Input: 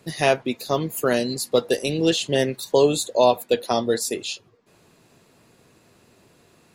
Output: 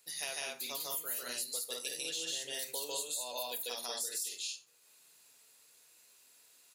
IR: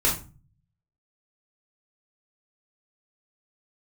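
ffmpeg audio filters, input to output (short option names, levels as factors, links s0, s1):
-filter_complex "[0:a]aderivative,aecho=1:1:148.7|198.3:1|0.891,asplit=2[s0][s1];[1:a]atrim=start_sample=2205[s2];[s1][s2]afir=irnorm=-1:irlink=0,volume=0.0841[s3];[s0][s3]amix=inputs=2:normalize=0,acompressor=threshold=0.0251:ratio=6,volume=0.668"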